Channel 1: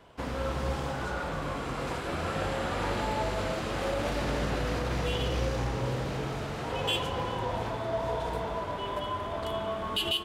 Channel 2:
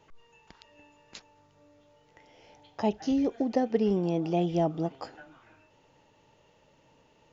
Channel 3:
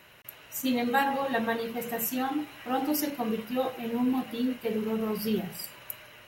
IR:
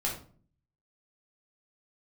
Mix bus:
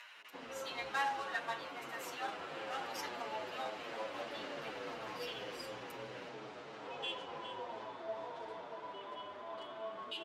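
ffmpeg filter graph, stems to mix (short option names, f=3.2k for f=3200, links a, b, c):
-filter_complex "[0:a]adelay=150,volume=-9dB,asplit=2[a][b];[b]volume=-12dB[c];[2:a]highpass=f=830:w=0.5412,highpass=f=830:w=1.3066,acrusher=bits=2:mode=log:mix=0:aa=0.000001,acompressor=mode=upward:threshold=-39dB:ratio=2.5,volume=-4dB[d];[c]aecho=0:1:409:1[e];[a][d][e]amix=inputs=3:normalize=0,highpass=320,lowpass=5.4k,asplit=2[f][g];[g]adelay=7.8,afreqshift=-2.9[h];[f][h]amix=inputs=2:normalize=1"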